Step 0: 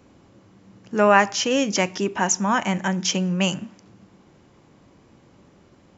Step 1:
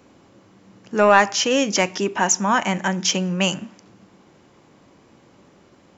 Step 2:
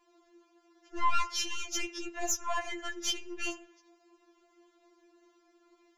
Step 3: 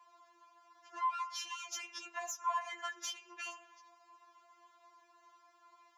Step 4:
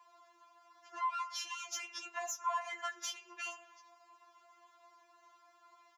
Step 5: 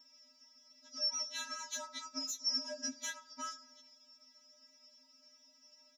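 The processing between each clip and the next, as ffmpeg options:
-filter_complex "[0:a]lowshelf=f=150:g=-9.5,asplit=2[s0][s1];[s1]acontrast=51,volume=1.06[s2];[s0][s2]amix=inputs=2:normalize=0,volume=0.473"
-af "aeval=exprs='(tanh(2.51*val(0)+0.5)-tanh(0.5))/2.51':c=same,afftfilt=real='re*4*eq(mod(b,16),0)':imag='im*4*eq(mod(b,16),0)':win_size=2048:overlap=0.75,volume=0.422"
-af "acompressor=threshold=0.0112:ratio=6,highpass=f=930:t=q:w=4.9"
-filter_complex "[0:a]asplit=2[s0][s1];[s1]adelay=16,volume=0.266[s2];[s0][s2]amix=inputs=2:normalize=0,volume=1.12"
-af "afftfilt=real='real(if(lt(b,272),68*(eq(floor(b/68),0)*1+eq(floor(b/68),1)*2+eq(floor(b/68),2)*3+eq(floor(b/68),3)*0)+mod(b,68),b),0)':imag='imag(if(lt(b,272),68*(eq(floor(b/68),0)*1+eq(floor(b/68),1)*2+eq(floor(b/68),2)*3+eq(floor(b/68),3)*0)+mod(b,68),b),0)':win_size=2048:overlap=0.75"

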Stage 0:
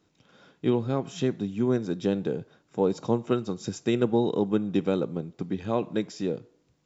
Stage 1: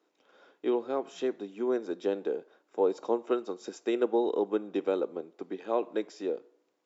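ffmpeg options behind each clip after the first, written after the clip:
-af "highpass=f=340:w=0.5412,highpass=f=340:w=1.3066,highshelf=f=2300:g=-9.5"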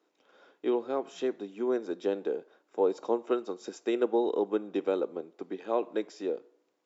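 -af anull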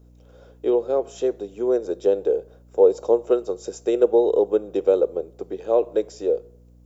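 -af "equalizer=f=125:t=o:w=1:g=5,equalizer=f=250:t=o:w=1:g=-9,equalizer=f=500:t=o:w=1:g=10,equalizer=f=1000:t=o:w=1:g=-5,equalizer=f=2000:t=o:w=1:g=-8,equalizer=f=4000:t=o:w=1:g=-5,aeval=exprs='val(0)+0.00178*(sin(2*PI*60*n/s)+sin(2*PI*2*60*n/s)/2+sin(2*PI*3*60*n/s)/3+sin(2*PI*4*60*n/s)/4+sin(2*PI*5*60*n/s)/5)':c=same,crystalizer=i=1.5:c=0,volume=1.88"

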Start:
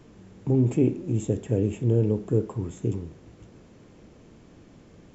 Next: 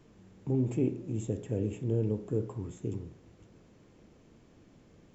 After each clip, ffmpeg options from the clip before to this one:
-af "bandreject=f=59.47:t=h:w=4,bandreject=f=118.94:t=h:w=4,bandreject=f=178.41:t=h:w=4,bandreject=f=237.88:t=h:w=4,bandreject=f=297.35:t=h:w=4,bandreject=f=356.82:t=h:w=4,bandreject=f=416.29:t=h:w=4,bandreject=f=475.76:t=h:w=4,bandreject=f=535.23:t=h:w=4,bandreject=f=594.7:t=h:w=4,bandreject=f=654.17:t=h:w=4,bandreject=f=713.64:t=h:w=4,bandreject=f=773.11:t=h:w=4,bandreject=f=832.58:t=h:w=4,bandreject=f=892.05:t=h:w=4,bandreject=f=951.52:t=h:w=4,bandreject=f=1010.99:t=h:w=4,bandreject=f=1070.46:t=h:w=4,bandreject=f=1129.93:t=h:w=4,bandreject=f=1189.4:t=h:w=4,bandreject=f=1248.87:t=h:w=4,bandreject=f=1308.34:t=h:w=4,bandreject=f=1367.81:t=h:w=4,bandreject=f=1427.28:t=h:w=4,bandreject=f=1486.75:t=h:w=4,bandreject=f=1546.22:t=h:w=4,bandreject=f=1605.69:t=h:w=4,bandreject=f=1665.16:t=h:w=4,bandreject=f=1724.63:t=h:w=4,bandreject=f=1784.1:t=h:w=4,volume=0.447"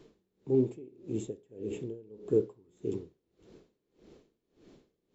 -af "equalizer=f=100:t=o:w=0.67:g=-7,equalizer=f=400:t=o:w=0.67:g=10,equalizer=f=4000:t=o:w=0.67:g=8,aeval=exprs='val(0)*pow(10,-27*(0.5-0.5*cos(2*PI*1.7*n/s))/20)':c=same"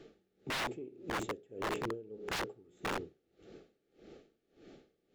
-filter_complex "[0:a]asuperstop=centerf=1000:order=12:qfactor=4.1,aeval=exprs='(mod(37.6*val(0)+1,2)-1)/37.6':c=same,asplit=2[s0][s1];[s1]highpass=f=720:p=1,volume=2,asoftclip=type=tanh:threshold=0.0266[s2];[s0][s2]amix=inputs=2:normalize=0,lowpass=f=2500:p=1,volume=0.501,volume=1.58"

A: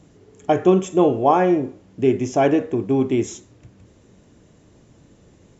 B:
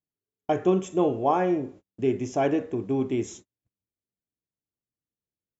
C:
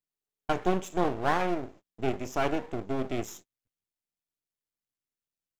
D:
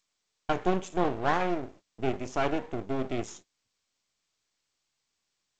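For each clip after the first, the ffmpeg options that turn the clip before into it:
-af "agate=range=0.01:threshold=0.0126:ratio=16:detection=peak,volume=0.447"
-af "aeval=exprs='max(val(0),0)':c=same,tiltshelf=f=720:g=-3"
-ar 16000 -c:a g722

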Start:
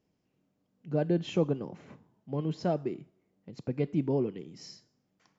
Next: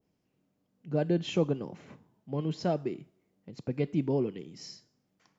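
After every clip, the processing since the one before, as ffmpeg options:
-af "adynamicequalizer=threshold=0.00316:dfrequency=1900:dqfactor=0.7:tfrequency=1900:tqfactor=0.7:attack=5:release=100:ratio=0.375:range=2:mode=boostabove:tftype=highshelf"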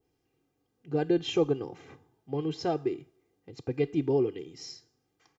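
-af "aecho=1:1:2.5:0.79"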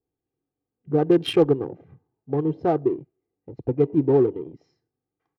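-af "acrusher=bits=6:mode=log:mix=0:aa=0.000001,afwtdn=0.00891,adynamicsmooth=sensitivity=6:basefreq=1700,volume=2.51"

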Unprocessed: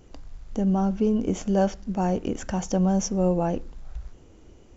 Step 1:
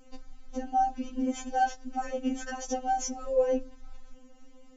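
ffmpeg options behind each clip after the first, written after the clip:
-af "afftfilt=real='re*3.46*eq(mod(b,12),0)':imag='im*3.46*eq(mod(b,12),0)':win_size=2048:overlap=0.75"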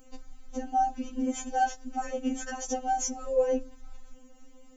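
-af "aexciter=amount=1.5:drive=7.7:freq=6700"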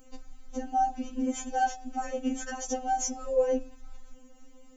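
-af "bandreject=f=152.3:t=h:w=4,bandreject=f=304.6:t=h:w=4,bandreject=f=456.9:t=h:w=4,bandreject=f=609.2:t=h:w=4,bandreject=f=761.5:t=h:w=4,bandreject=f=913.8:t=h:w=4,bandreject=f=1066.1:t=h:w=4,bandreject=f=1218.4:t=h:w=4,bandreject=f=1370.7:t=h:w=4,bandreject=f=1523:t=h:w=4,bandreject=f=1675.3:t=h:w=4,bandreject=f=1827.6:t=h:w=4,bandreject=f=1979.9:t=h:w=4,bandreject=f=2132.2:t=h:w=4,bandreject=f=2284.5:t=h:w=4,bandreject=f=2436.8:t=h:w=4,bandreject=f=2589.1:t=h:w=4,bandreject=f=2741.4:t=h:w=4,bandreject=f=2893.7:t=h:w=4,bandreject=f=3046:t=h:w=4,bandreject=f=3198.3:t=h:w=4,bandreject=f=3350.6:t=h:w=4,bandreject=f=3502.9:t=h:w=4,bandreject=f=3655.2:t=h:w=4,bandreject=f=3807.5:t=h:w=4,bandreject=f=3959.8:t=h:w=4,bandreject=f=4112.1:t=h:w=4,bandreject=f=4264.4:t=h:w=4,bandreject=f=4416.7:t=h:w=4,bandreject=f=4569:t=h:w=4,bandreject=f=4721.3:t=h:w=4,bandreject=f=4873.6:t=h:w=4,bandreject=f=5025.9:t=h:w=4,bandreject=f=5178.2:t=h:w=4,bandreject=f=5330.5:t=h:w=4,bandreject=f=5482.8:t=h:w=4,bandreject=f=5635.1:t=h:w=4,bandreject=f=5787.4:t=h:w=4"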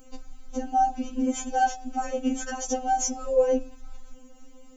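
-af "bandreject=f=1900:w=7.7,volume=1.58"

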